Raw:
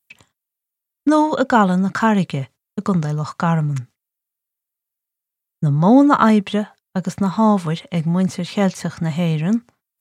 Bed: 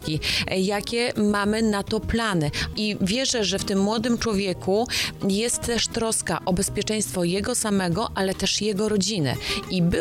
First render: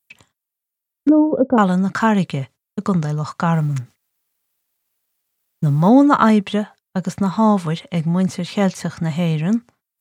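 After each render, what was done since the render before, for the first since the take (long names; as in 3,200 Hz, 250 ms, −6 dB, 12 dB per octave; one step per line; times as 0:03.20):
0:01.09–0:01.58: low-pass with resonance 440 Hz, resonance Q 1.7
0:03.53–0:05.89: mu-law and A-law mismatch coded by mu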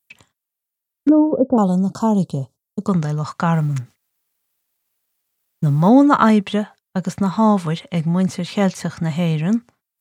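0:01.37–0:02.88: Butterworth band-reject 2,000 Hz, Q 0.54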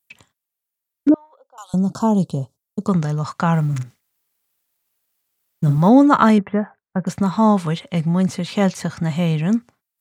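0:01.14–0:01.74: Bessel high-pass filter 2,100 Hz, order 4
0:03.68–0:05.78: double-tracking delay 47 ms −9 dB
0:06.38–0:07.07: Butterworth low-pass 2,000 Hz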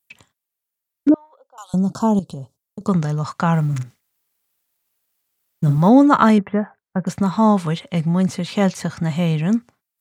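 0:02.19–0:02.81: downward compressor, threshold −27 dBFS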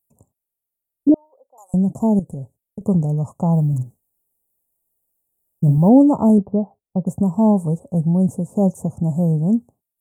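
inverse Chebyshev band-stop filter 1,500–4,500 Hz, stop band 50 dB
low-shelf EQ 71 Hz +10 dB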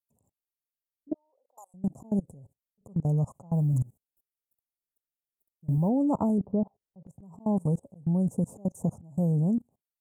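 volume swells 277 ms
output level in coarse steps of 24 dB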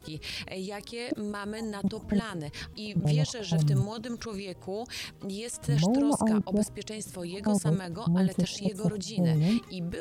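mix in bed −13.5 dB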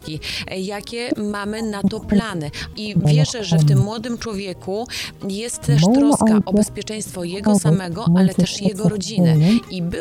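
level +11 dB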